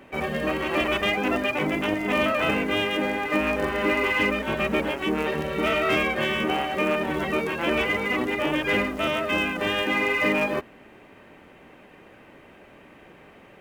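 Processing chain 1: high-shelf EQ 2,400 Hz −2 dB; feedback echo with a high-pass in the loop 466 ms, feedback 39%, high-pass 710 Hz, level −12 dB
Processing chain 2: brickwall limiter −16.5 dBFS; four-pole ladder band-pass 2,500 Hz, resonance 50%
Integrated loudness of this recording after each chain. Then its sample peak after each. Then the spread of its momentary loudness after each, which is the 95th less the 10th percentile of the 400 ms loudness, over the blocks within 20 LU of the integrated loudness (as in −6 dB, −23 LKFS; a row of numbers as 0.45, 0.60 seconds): −24.5, −35.0 LKFS; −11.0, −23.0 dBFS; 5, 8 LU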